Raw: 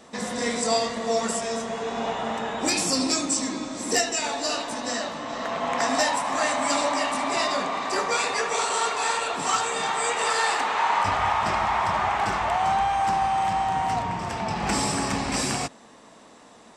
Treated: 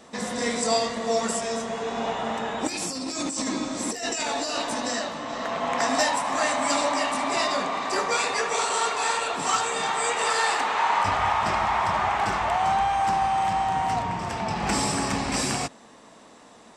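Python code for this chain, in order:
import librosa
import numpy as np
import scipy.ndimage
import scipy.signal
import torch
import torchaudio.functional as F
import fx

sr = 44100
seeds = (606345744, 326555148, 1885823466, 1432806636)

y = fx.over_compress(x, sr, threshold_db=-29.0, ratio=-1.0, at=(2.67, 4.99))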